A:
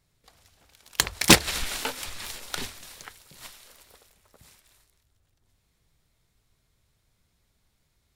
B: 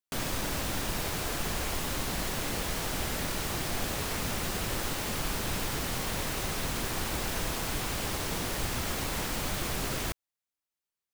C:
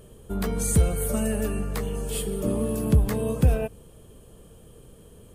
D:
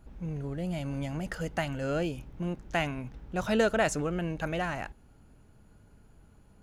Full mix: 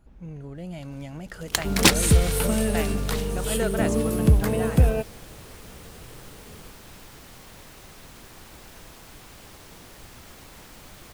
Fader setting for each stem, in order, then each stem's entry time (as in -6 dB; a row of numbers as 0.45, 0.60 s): -2.0, -13.5, +2.0, -3.0 dB; 0.55, 1.40, 1.35, 0.00 s